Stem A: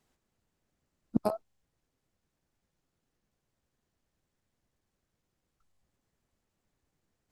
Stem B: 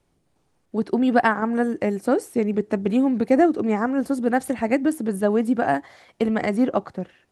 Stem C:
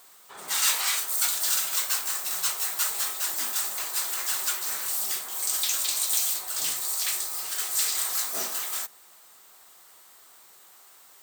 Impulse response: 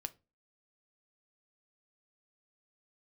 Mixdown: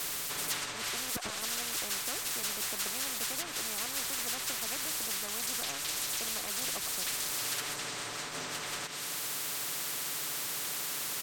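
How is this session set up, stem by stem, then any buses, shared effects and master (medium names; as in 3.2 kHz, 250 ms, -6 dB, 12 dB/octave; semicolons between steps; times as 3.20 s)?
-1.5 dB, 0.00 s, no send, compression 1.5:1, threshold -33 dBFS, peak gain reduction 5 dB
-7.5 dB, 0.00 s, no send, vowel filter a
+1.5 dB, 0.00 s, no send, comb 6.9 ms, depth 86%; auto duck -14 dB, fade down 1.35 s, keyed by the second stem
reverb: none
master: low-pass that closes with the level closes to 880 Hz, closed at -22 dBFS; peaking EQ 760 Hz -14 dB 1 oct; spectrum-flattening compressor 4:1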